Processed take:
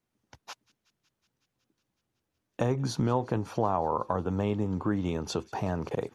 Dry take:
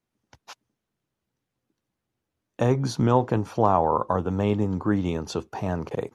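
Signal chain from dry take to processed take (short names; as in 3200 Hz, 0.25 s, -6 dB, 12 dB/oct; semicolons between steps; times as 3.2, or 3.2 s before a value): compressor 2:1, threshold -28 dBFS, peak gain reduction 8 dB; on a send: thin delay 0.185 s, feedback 79%, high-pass 1900 Hz, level -23.5 dB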